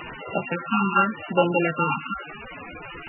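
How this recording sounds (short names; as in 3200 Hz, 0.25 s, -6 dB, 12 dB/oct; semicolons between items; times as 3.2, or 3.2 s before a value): a buzz of ramps at a fixed pitch in blocks of 32 samples; phasing stages 8, 0.89 Hz, lowest notch 520–1800 Hz; a quantiser's noise floor 6-bit, dither triangular; MP3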